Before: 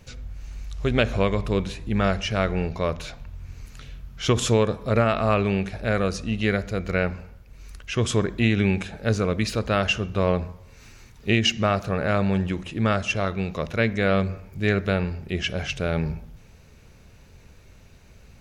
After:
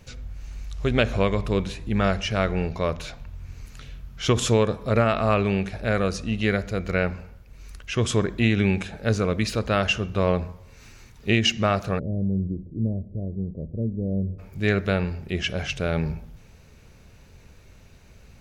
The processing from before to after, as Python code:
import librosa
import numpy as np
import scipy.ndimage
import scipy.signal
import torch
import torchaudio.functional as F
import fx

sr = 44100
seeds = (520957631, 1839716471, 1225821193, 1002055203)

y = fx.gaussian_blur(x, sr, sigma=22.0, at=(11.98, 14.38), fade=0.02)